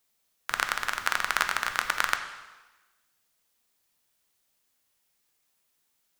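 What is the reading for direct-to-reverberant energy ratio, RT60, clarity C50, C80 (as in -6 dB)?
6.0 dB, 1.2 s, 9.0 dB, 10.5 dB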